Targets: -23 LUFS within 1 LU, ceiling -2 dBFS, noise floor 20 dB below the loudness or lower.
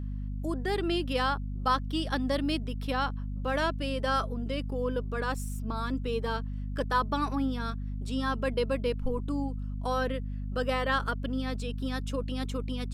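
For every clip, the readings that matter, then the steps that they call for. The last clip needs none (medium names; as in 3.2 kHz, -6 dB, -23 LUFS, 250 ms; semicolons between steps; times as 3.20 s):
hum 50 Hz; highest harmonic 250 Hz; hum level -32 dBFS; loudness -31.5 LUFS; peak level -15.0 dBFS; loudness target -23.0 LUFS
-> hum notches 50/100/150/200/250 Hz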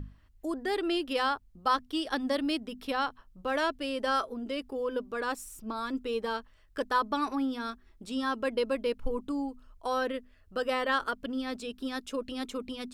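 hum not found; loudness -32.5 LUFS; peak level -15.0 dBFS; loudness target -23.0 LUFS
-> trim +9.5 dB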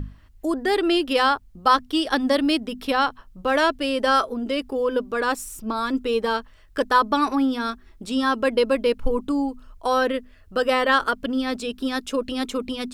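loudness -23.0 LUFS; peak level -5.5 dBFS; noise floor -50 dBFS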